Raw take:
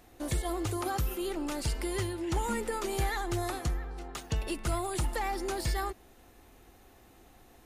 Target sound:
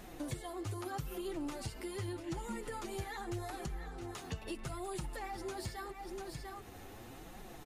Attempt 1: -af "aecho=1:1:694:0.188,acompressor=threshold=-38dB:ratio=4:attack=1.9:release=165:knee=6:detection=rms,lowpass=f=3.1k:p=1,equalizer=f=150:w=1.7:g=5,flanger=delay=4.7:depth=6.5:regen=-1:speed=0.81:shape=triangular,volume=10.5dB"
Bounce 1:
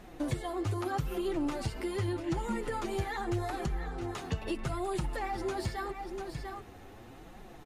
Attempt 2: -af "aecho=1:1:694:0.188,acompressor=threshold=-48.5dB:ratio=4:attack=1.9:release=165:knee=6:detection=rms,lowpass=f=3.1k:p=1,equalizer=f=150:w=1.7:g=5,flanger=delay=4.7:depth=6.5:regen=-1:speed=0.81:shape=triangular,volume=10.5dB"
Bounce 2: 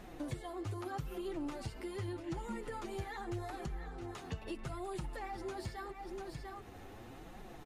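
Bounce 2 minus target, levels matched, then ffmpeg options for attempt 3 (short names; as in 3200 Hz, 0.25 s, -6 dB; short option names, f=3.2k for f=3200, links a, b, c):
8000 Hz band -6.5 dB
-af "aecho=1:1:694:0.188,acompressor=threshold=-48.5dB:ratio=4:attack=1.9:release=165:knee=6:detection=rms,lowpass=f=12k:p=1,equalizer=f=150:w=1.7:g=5,flanger=delay=4.7:depth=6.5:regen=-1:speed=0.81:shape=triangular,volume=10.5dB"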